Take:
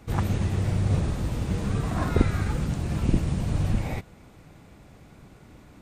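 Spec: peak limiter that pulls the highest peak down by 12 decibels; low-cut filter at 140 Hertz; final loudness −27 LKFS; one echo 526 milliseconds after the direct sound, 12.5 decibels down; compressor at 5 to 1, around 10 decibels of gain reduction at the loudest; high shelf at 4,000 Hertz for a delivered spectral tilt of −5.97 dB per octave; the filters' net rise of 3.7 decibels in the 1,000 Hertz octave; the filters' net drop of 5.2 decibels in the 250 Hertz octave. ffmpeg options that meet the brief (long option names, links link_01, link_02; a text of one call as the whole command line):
ffmpeg -i in.wav -af "highpass=140,equalizer=frequency=250:width_type=o:gain=-6.5,equalizer=frequency=1000:width_type=o:gain=5.5,highshelf=frequency=4000:gain=-5.5,acompressor=threshold=-32dB:ratio=5,alimiter=level_in=7.5dB:limit=-24dB:level=0:latency=1,volume=-7.5dB,aecho=1:1:526:0.237,volume=14dB" out.wav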